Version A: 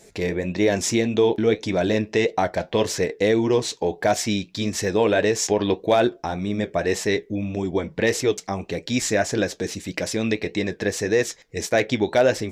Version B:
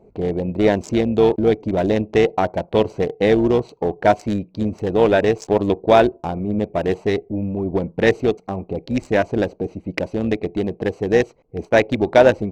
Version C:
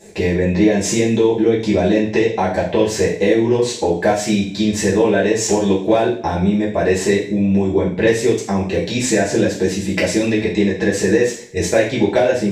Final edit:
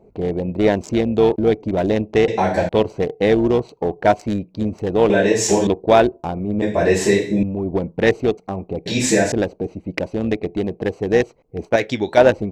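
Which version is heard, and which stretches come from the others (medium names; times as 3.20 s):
B
2.28–2.69 s: from C
5.10–5.67 s: from C
6.62–7.43 s: from C
8.86–9.32 s: from C
11.76–12.17 s: from A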